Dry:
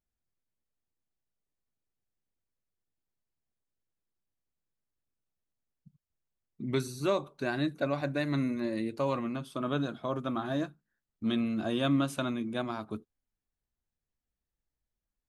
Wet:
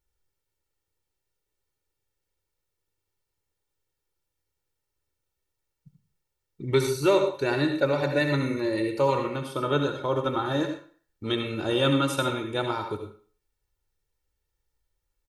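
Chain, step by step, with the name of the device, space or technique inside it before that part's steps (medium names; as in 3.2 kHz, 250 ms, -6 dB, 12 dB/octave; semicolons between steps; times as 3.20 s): microphone above a desk (comb 2.2 ms, depth 76%; reverberation RT60 0.45 s, pre-delay 64 ms, DRR 5 dB); trim +5.5 dB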